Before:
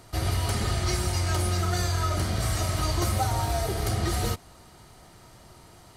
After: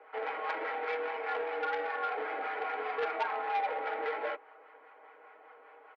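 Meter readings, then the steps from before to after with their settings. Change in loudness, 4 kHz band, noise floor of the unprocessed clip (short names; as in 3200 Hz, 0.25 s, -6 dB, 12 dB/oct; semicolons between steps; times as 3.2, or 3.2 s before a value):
-7.5 dB, -16.5 dB, -52 dBFS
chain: comb 6 ms, depth 83%; harmonic tremolo 5 Hz, depth 50%, crossover 620 Hz; mistuned SSB +120 Hz 310–2300 Hz; core saturation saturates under 1500 Hz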